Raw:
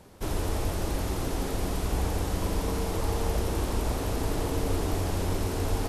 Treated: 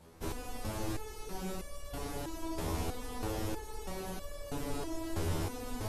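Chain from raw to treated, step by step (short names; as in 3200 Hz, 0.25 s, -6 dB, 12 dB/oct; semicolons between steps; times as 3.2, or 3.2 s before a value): stepped resonator 3.1 Hz 82–570 Hz; gain +4 dB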